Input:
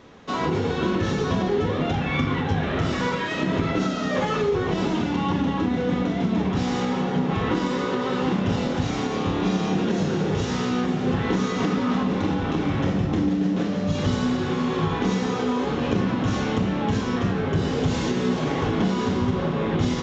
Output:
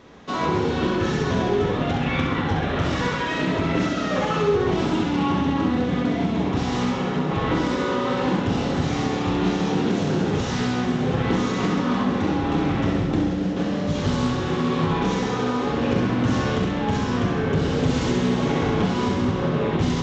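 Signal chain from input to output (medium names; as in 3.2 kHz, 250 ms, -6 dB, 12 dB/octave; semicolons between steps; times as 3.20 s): flutter echo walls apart 11.3 m, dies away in 0.85 s; loudspeaker Doppler distortion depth 0.19 ms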